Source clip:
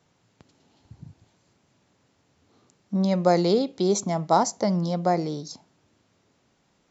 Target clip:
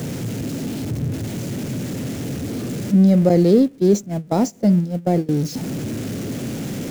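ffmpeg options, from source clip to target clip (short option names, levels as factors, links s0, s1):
-filter_complex "[0:a]aeval=exprs='val(0)+0.5*0.0531*sgn(val(0))':c=same,asettb=1/sr,asplit=3[s0][s1][s2];[s0]atrim=end=3.294[s3];[s1]atrim=start=3.29:end=5.29,asetpts=PTS-STARTPTS,afade=t=in:d=0.004:c=qsin,afade=t=out:st=1.996:d=0.004:c=qsin,agate=range=0.0891:threshold=0.0891:ratio=16:detection=peak[s4];[s2]atrim=start=5.286[s5];[s3][s4]acrossfade=d=0.004:c1=hsin:c2=qsin[s6];[s6][s5]acrossfade=d=0.004:c1=qsin:c2=hsin,equalizer=f=125:t=o:w=1:g=10,equalizer=f=250:t=o:w=1:g=10,equalizer=f=500:t=o:w=1:g=5,equalizer=f=1000:t=o:w=1:g=-10,equalizer=f=4000:t=o:w=1:g=-4,volume=0.794"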